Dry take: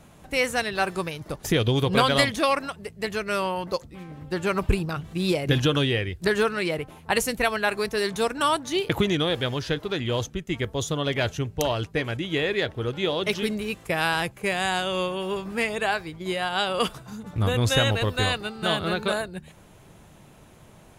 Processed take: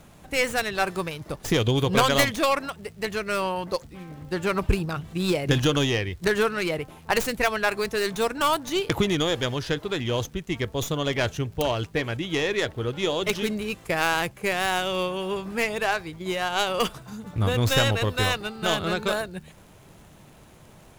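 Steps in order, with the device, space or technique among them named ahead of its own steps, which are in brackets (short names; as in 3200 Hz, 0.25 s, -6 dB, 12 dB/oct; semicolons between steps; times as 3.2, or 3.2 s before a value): record under a worn stylus (tracing distortion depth 0.27 ms; crackle; pink noise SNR 37 dB)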